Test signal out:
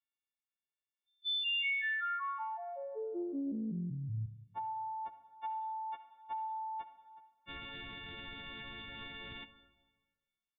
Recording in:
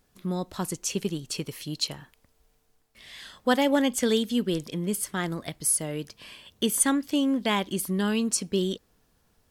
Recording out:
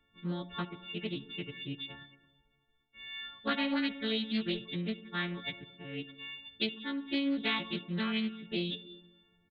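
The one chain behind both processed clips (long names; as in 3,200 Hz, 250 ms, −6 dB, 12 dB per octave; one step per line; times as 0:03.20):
every partial snapped to a pitch grid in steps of 4 semitones
parametric band 630 Hz −9.5 dB 0.56 octaves
downward compressor 2.5 to 1, threshold −24 dBFS
reverb reduction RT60 0.67 s
dense smooth reverb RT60 1.4 s, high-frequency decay 0.95×, pre-delay 0 ms, DRR 10 dB
downsampling to 8,000 Hz
highs frequency-modulated by the lows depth 0.22 ms
level −4.5 dB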